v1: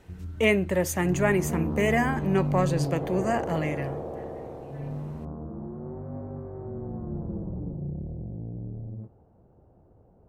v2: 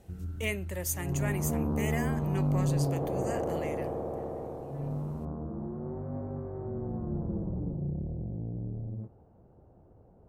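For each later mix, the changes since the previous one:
speech: add pre-emphasis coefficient 0.8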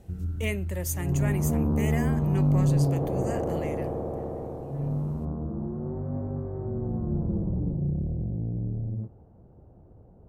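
master: add low shelf 340 Hz +7 dB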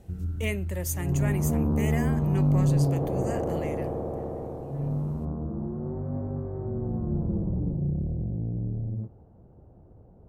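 none

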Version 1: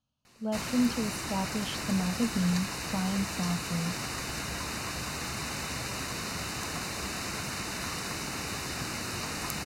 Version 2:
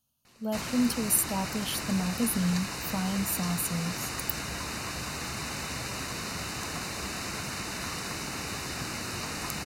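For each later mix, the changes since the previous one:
speech: remove air absorption 150 m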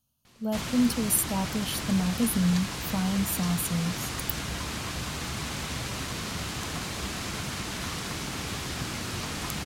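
background: remove Butterworth band-stop 3300 Hz, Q 5.2; master: add low shelf 210 Hz +6 dB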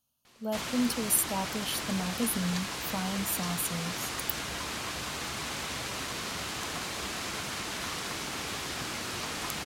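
master: add tone controls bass -10 dB, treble -1 dB

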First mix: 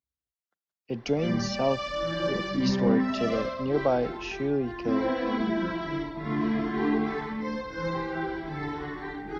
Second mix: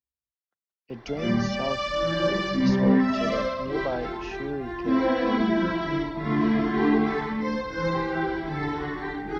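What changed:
speech -5.0 dB; background +4.5 dB

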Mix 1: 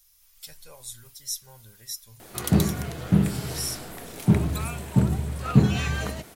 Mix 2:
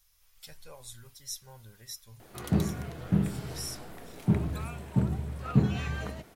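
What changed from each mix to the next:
background -6.0 dB; master: add high shelf 4200 Hz -10 dB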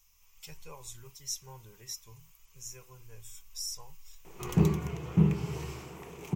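background: entry +2.05 s; master: add ripple EQ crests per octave 0.74, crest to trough 11 dB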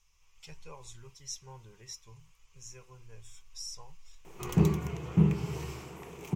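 speech: add air absorption 67 m

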